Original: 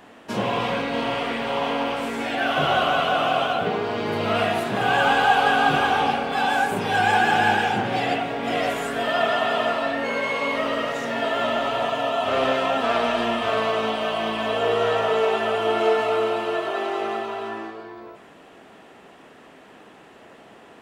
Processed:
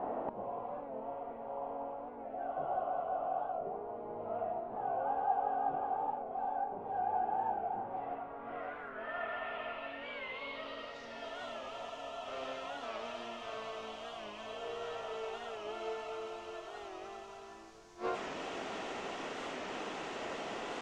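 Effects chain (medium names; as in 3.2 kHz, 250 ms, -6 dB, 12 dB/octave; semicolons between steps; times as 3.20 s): low-pass 10 kHz; tone controls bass -7 dB, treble -3 dB; band-stop 1.7 kHz, Q 12; inverted gate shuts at -31 dBFS, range -27 dB; added noise pink -71 dBFS; low-pass sweep 760 Hz -> 6.3 kHz, 7.57–11.47 s; warped record 45 rpm, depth 100 cents; trim +7 dB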